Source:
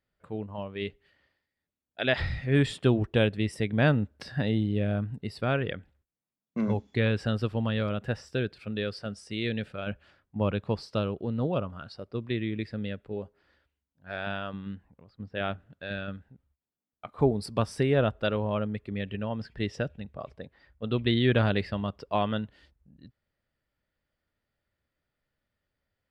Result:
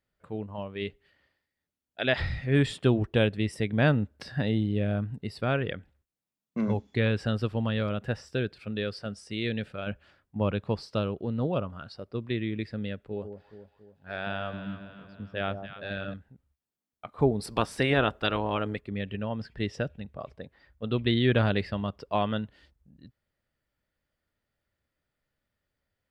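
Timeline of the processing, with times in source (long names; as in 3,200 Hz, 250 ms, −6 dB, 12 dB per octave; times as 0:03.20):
0:13.03–0:16.14: delay that swaps between a low-pass and a high-pass 140 ms, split 870 Hz, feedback 70%, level −7.5 dB
0:17.39–0:18.79: ceiling on every frequency bin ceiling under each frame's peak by 14 dB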